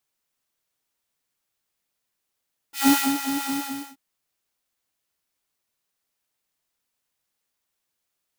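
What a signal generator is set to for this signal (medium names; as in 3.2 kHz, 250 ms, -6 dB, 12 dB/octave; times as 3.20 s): synth patch with filter wobble C#4, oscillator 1 square, oscillator 2 level -18 dB, sub -25.5 dB, noise -3 dB, filter highpass, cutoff 200 Hz, Q 1.1, filter envelope 2 oct, filter decay 0.51 s, filter sustain 35%, attack 147 ms, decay 0.27 s, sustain -10 dB, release 0.44 s, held 0.79 s, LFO 4.6 Hz, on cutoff 1.9 oct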